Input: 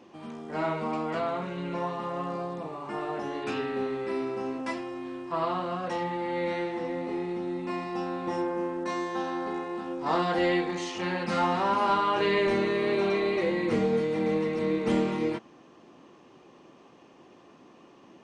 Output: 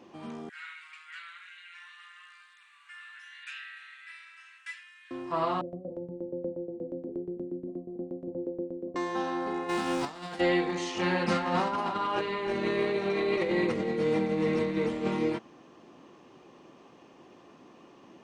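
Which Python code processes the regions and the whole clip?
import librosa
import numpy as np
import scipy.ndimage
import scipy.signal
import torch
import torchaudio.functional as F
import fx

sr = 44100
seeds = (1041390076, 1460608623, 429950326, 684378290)

y = fx.chain(x, sr, fx.ellip_highpass(hz=1600.0, order=4, stop_db=60),
    fx.peak_eq(hz=5100.0, db=-10.0, octaves=0.79), at=(0.49, 5.11))
y = fx.chain(y, sr, fx.cheby1_lowpass(hz=590.0, order=5),
    fx.tremolo_shape(shape='saw_down', hz=8.4, depth_pct=85), at=(5.61, 8.96))
y = fx.envelope_flatten(y, sr, power=0.6, at=(9.68, 10.39), fade=0.02)
y = fx.over_compress(y, sr, threshold_db=-33.0, ratio=-0.5, at=(9.68, 10.39), fade=0.02)
y = fx.chain(y, sr, fx.over_compress(threshold_db=-28.0, ratio=-0.5),
    fx.echo_single(ms=314, db=-9.5), at=(10.97, 15.08))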